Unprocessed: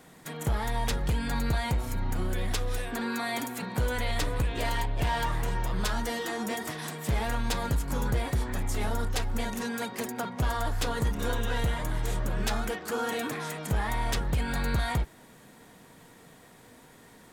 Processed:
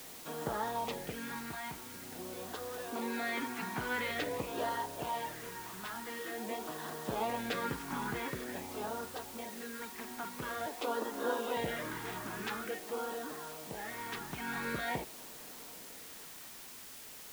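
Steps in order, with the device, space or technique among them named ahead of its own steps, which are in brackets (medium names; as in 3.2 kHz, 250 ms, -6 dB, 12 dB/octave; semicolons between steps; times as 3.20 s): 10.66–11.57 s: elliptic high-pass 230 Hz; shortwave radio (band-pass 290–2600 Hz; tremolo 0.26 Hz, depth 63%; LFO notch sine 0.47 Hz 510–2400 Hz; white noise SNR 10 dB); trim +1 dB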